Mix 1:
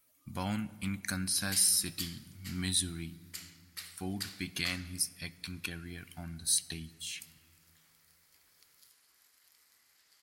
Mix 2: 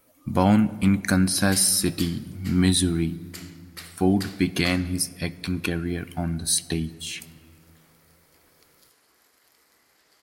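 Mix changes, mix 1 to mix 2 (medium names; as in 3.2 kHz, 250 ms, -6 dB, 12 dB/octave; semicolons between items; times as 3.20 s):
background -3.5 dB; master: remove amplifier tone stack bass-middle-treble 5-5-5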